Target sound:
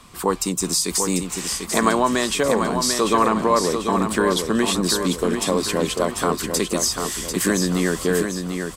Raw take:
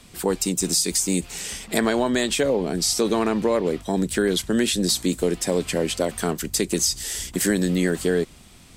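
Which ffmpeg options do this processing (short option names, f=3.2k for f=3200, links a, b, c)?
-filter_complex "[0:a]equalizer=f=1.1k:w=3:g=14.5,asplit=2[a][b];[b]aecho=0:1:743|1486|2229|2972|3715:0.501|0.216|0.0927|0.0398|0.0171[c];[a][c]amix=inputs=2:normalize=0"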